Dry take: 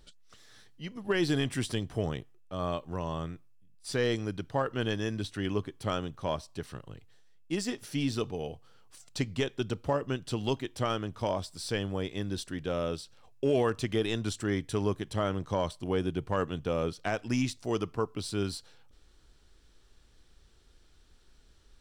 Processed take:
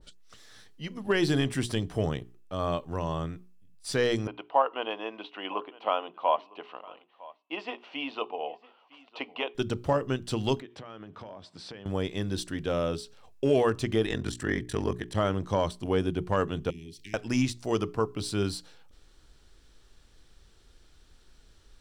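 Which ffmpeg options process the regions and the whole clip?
ffmpeg -i in.wav -filter_complex "[0:a]asettb=1/sr,asplit=3[link_01][link_02][link_03];[link_01]atrim=end=4.274[link_04];[link_02]atrim=start=4.27:end=9.55,asetpts=PTS-STARTPTS,afade=type=in:duration=0.004:curve=qsin,afade=type=out:start_time=5.276:duration=0.004:curve=qsin,highpass=frequency=360:width=0.5412,highpass=frequency=360:width=1.3066,equalizer=frequency=390:width_type=q:width=4:gain=-9,equalizer=frequency=730:width_type=q:width=4:gain=7,equalizer=frequency=1000:width_type=q:width=4:gain=9,equalizer=frequency=1700:width_type=q:width=4:gain=-10,equalizer=frequency=2800:width_type=q:width=4:gain=7,lowpass=frequency=2900:width=0.5412,lowpass=frequency=2900:width=1.3066,aecho=1:1:957:0.0841,atrim=end_sample=232848[link_05];[link_03]atrim=start=9.546[link_06];[link_04][link_05]acrossfade=duration=0.004:curve1=hsin:curve2=qsin[link_07];[link_07][link_06]acrossfade=duration=0.004:curve1=qsin:curve2=hsin,asettb=1/sr,asplit=3[link_08][link_09][link_10];[link_08]atrim=end=10.604[link_11];[link_09]atrim=start=10.6:end=11.86,asetpts=PTS-STARTPTS,afade=type=in:duration=0.004:curve=qsin,afade=type=out:start_time=1.256:duration=0.004:curve=qsin,highpass=140,lowpass=3000,acompressor=threshold=-42dB:ratio=12:attack=3.2:release=140:knee=1:detection=peak[link_12];[link_10]atrim=start=11.856[link_13];[link_11][link_12]acrossfade=duration=0.004:curve1=hsin:curve2=qsin[link_14];[link_14][link_13]acrossfade=duration=0.004:curve1=qsin:curve2=hsin,asettb=1/sr,asplit=3[link_15][link_16][link_17];[link_15]atrim=end=14.054[link_18];[link_16]atrim=start=14.05:end=15.15,asetpts=PTS-STARTPTS,afade=type=in:duration=0.004:curve=qsin,afade=type=out:start_time=1.096:duration=0.004:curve=qsin,equalizer=frequency=1800:width=5.5:gain=10,aeval=exprs='val(0)*sin(2*PI*22*n/s)':channel_layout=same[link_19];[link_17]atrim=start=15.146[link_20];[link_18][link_19]acrossfade=duration=0.004:curve1=hsin:curve2=qsin[link_21];[link_21][link_20]acrossfade=duration=0.004:curve1=qsin:curve2=hsin,asettb=1/sr,asplit=3[link_22][link_23][link_24];[link_22]atrim=end=16.704[link_25];[link_23]atrim=start=16.7:end=17.14,asetpts=PTS-STARTPTS,afade=type=in:duration=0.004:curve=qsin,afade=type=out:start_time=0.436:duration=0.004:curve=qsin,asuperstop=centerf=870:order=20:qfactor=0.6,highshelf=frequency=10000:gain=7,acompressor=threshold=-48dB:ratio=3:attack=3.2:release=140:knee=1:detection=peak[link_26];[link_24]atrim=start=17.136[link_27];[link_25][link_26]acrossfade=duration=0.004:curve1=hsin:curve2=qsin[link_28];[link_28][link_27]acrossfade=duration=0.004:curve1=qsin:curve2=hsin,bandreject=frequency=60:width_type=h:width=6,bandreject=frequency=120:width_type=h:width=6,bandreject=frequency=180:width_type=h:width=6,bandreject=frequency=240:width_type=h:width=6,bandreject=frequency=300:width_type=h:width=6,bandreject=frequency=360:width_type=h:width=6,bandreject=frequency=420:width_type=h:width=6,adynamicequalizer=threshold=0.00794:dfrequency=1500:dqfactor=0.7:tfrequency=1500:tqfactor=0.7:attack=5:release=100:ratio=0.375:range=2:mode=cutabove:tftype=highshelf,volume=3.5dB" out.wav

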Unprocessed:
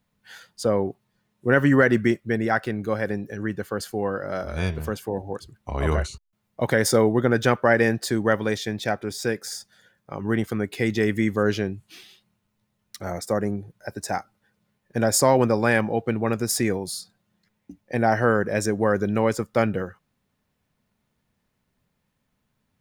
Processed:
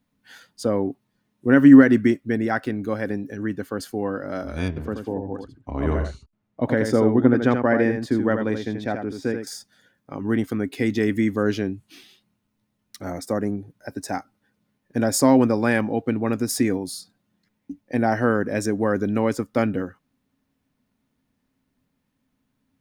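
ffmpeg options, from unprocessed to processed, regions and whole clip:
ffmpeg -i in.wav -filter_complex "[0:a]asettb=1/sr,asplit=3[link_01][link_02][link_03];[link_01]atrim=end=4.684[link_04];[link_02]atrim=start=4.68:end=9.47,asetpts=PTS-STARTPTS,afade=type=in:duration=0.004:curve=qsin,afade=type=out:start_time=4.786:duration=0.004:curve=qsin,lowpass=frequency=1700:poles=1,aecho=1:1:82:0.473,atrim=end_sample=211239[link_05];[link_03]atrim=start=9.466[link_06];[link_04][link_05]acrossfade=duration=0.004:curve1=hsin:curve2=qsin[link_07];[link_07][link_06]acrossfade=duration=0.004:curve1=qsin:curve2=hsin,equalizer=frequency=270:width=4.4:gain=14.5,bandreject=frequency=7300:width=29,volume=-2dB" out.wav

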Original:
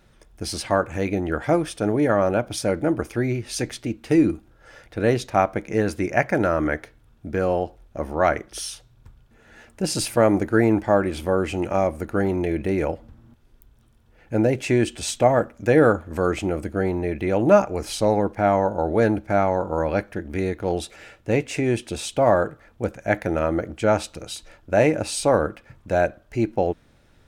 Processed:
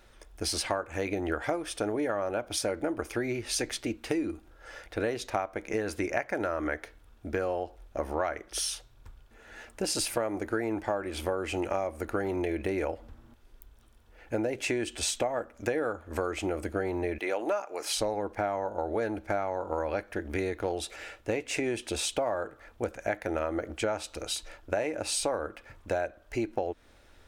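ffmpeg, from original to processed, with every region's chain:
ffmpeg -i in.wav -filter_complex "[0:a]asettb=1/sr,asplit=3[link_01][link_02][link_03];[link_01]atrim=end=17.184[link_04];[link_02]atrim=start=17.18:end=17.97,asetpts=PTS-STARTPTS,afade=type=in:duration=0.004:curve=qsin,afade=type=out:start_time=0.786:duration=0.004:curve=qsin,highpass=290,lowshelf=frequency=390:gain=-9.5[link_05];[link_03]atrim=start=17.966[link_06];[link_04][link_05]acrossfade=duration=0.004:curve1=hsin:curve2=qsin[link_07];[link_07][link_06]acrossfade=duration=0.004:curve1=qsin:curve2=hsin,equalizer=frequency=150:width=1.2:gain=-15,acompressor=threshold=-28dB:ratio=10,volume=1.5dB" out.wav

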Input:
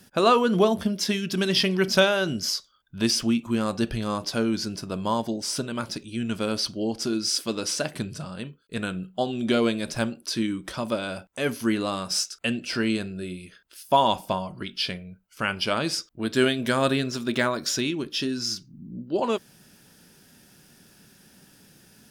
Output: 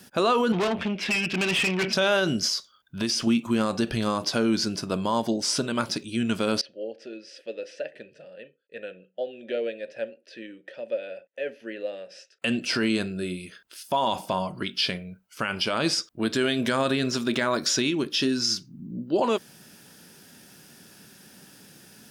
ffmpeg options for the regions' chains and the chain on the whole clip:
ffmpeg -i in.wav -filter_complex "[0:a]asettb=1/sr,asplit=3[link_01][link_02][link_03];[link_01]atrim=end=0.524[link_04];[link_02]atrim=start=0.52:end=1.93,asetpts=PTS-STARTPTS,afade=type=in:duration=0.004:curve=qsin,afade=type=out:start_time=1.406:duration=0.004:curve=qsin,lowpass=frequency=2500:width_type=q:width=5.8,aeval=exprs='(tanh(20*val(0)+0.4)-tanh(0.4))/20':channel_layout=same[link_05];[link_03]atrim=start=1.926[link_06];[link_04][link_05]acrossfade=duration=0.004:curve1=hsin:curve2=qsin[link_07];[link_07][link_06]acrossfade=duration=0.004:curve1=qsin:curve2=hsin,asettb=1/sr,asplit=3[link_08][link_09][link_10];[link_08]atrim=end=2.474[link_11];[link_09]atrim=start=2.47:end=3.27,asetpts=PTS-STARTPTS,afade=type=in:duration=0.004:curve=qsin,afade=type=out:start_time=0.796:duration=0.004:curve=qsin,bandreject=frequency=7700:width=27,acompressor=threshold=-26dB:ratio=5:attack=3.2:release=140:knee=1:detection=peak[link_12];[link_10]atrim=start=3.266[link_13];[link_11][link_12]acrossfade=duration=0.004:curve1=hsin:curve2=qsin[link_14];[link_14][link_13]acrossfade=duration=0.004:curve1=qsin:curve2=hsin,asettb=1/sr,asplit=3[link_15][link_16][link_17];[link_15]atrim=end=6.614[link_18];[link_16]atrim=start=6.61:end=12.42,asetpts=PTS-STARTPTS,afade=type=in:duration=0.004:curve=qsin,afade=type=out:start_time=5.806:duration=0.004:curve=qsin,asplit=3[link_19][link_20][link_21];[link_19]bandpass=frequency=530:width_type=q:width=8,volume=0dB[link_22];[link_20]bandpass=frequency=1840:width_type=q:width=8,volume=-6dB[link_23];[link_21]bandpass=frequency=2480:width_type=q:width=8,volume=-9dB[link_24];[link_22][link_23][link_24]amix=inputs=3:normalize=0,highshelf=frequency=8400:gain=-10.5[link_25];[link_17]atrim=start=12.416[link_26];[link_18][link_25]acrossfade=duration=0.004:curve1=hsin:curve2=qsin[link_27];[link_27][link_26]acrossfade=duration=0.004:curve1=qsin:curve2=hsin,acrossover=split=9300[link_28][link_29];[link_29]acompressor=threshold=-55dB:ratio=4:attack=1:release=60[link_30];[link_28][link_30]amix=inputs=2:normalize=0,highpass=frequency=150:poles=1,alimiter=limit=-18.5dB:level=0:latency=1:release=51,volume=4.5dB" out.wav

